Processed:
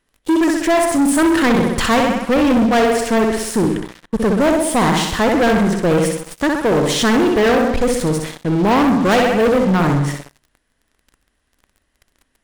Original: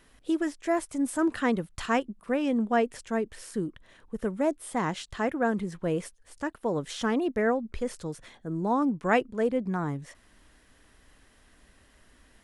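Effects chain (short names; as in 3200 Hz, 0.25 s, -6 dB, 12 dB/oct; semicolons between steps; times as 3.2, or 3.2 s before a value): flutter echo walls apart 10.9 m, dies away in 0.71 s; sample leveller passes 5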